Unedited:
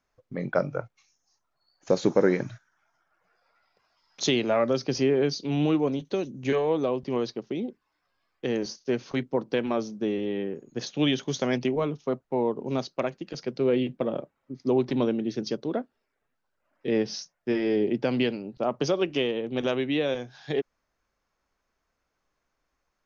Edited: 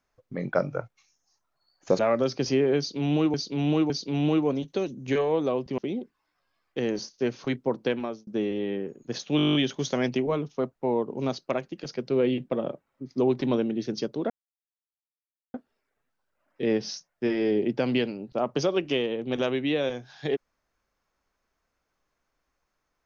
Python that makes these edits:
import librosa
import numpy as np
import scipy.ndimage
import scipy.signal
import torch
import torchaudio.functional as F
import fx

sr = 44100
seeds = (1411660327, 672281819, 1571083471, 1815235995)

y = fx.edit(x, sr, fx.cut(start_s=1.99, length_s=2.49),
    fx.repeat(start_s=5.27, length_s=0.56, count=3),
    fx.cut(start_s=7.15, length_s=0.3),
    fx.fade_out_span(start_s=9.57, length_s=0.37),
    fx.stutter(start_s=11.04, slice_s=0.02, count=10),
    fx.insert_silence(at_s=15.79, length_s=1.24), tone=tone)